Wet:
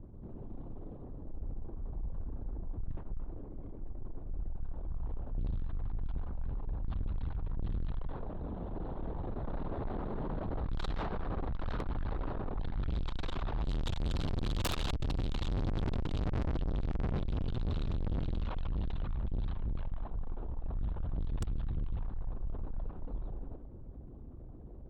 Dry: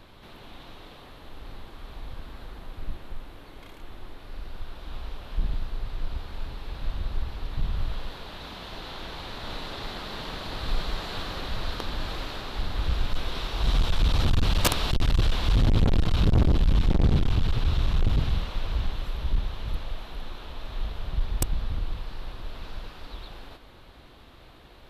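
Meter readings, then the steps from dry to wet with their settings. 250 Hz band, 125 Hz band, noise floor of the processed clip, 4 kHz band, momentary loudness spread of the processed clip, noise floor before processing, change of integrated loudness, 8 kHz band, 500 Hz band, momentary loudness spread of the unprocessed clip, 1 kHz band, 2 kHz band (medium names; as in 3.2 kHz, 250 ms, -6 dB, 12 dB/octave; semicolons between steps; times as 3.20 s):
-6.5 dB, -8.5 dB, -46 dBFS, -14.5 dB, 12 LU, -49 dBFS, -10.0 dB, -15.0 dB, -6.0 dB, 22 LU, -8.0 dB, -13.0 dB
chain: resonances exaggerated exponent 1.5; level-controlled noise filter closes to 330 Hz, open at -17.5 dBFS; valve stage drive 36 dB, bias 0.3; trim +5.5 dB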